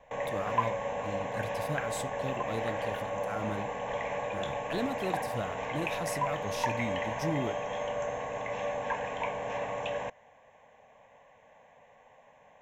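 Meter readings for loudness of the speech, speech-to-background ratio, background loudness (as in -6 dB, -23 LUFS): -39.0 LUFS, -4.5 dB, -34.5 LUFS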